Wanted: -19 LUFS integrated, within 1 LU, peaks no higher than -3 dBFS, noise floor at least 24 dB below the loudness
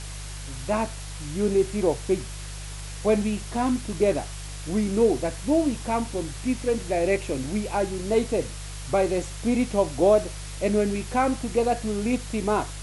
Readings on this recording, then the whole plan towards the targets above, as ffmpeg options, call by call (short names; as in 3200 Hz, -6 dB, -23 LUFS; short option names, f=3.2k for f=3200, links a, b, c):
hum 50 Hz; harmonics up to 150 Hz; hum level -34 dBFS; noise floor -36 dBFS; noise floor target -50 dBFS; loudness -25.5 LUFS; peak -8.0 dBFS; loudness target -19.0 LUFS
-> -af "bandreject=f=50:t=h:w=4,bandreject=f=100:t=h:w=4,bandreject=f=150:t=h:w=4"
-af "afftdn=nr=14:nf=-36"
-af "volume=6.5dB,alimiter=limit=-3dB:level=0:latency=1"